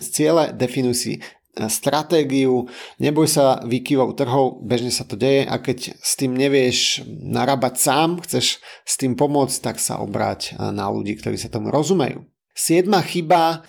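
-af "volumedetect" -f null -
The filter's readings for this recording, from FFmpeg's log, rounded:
mean_volume: -19.7 dB
max_volume: -4.3 dB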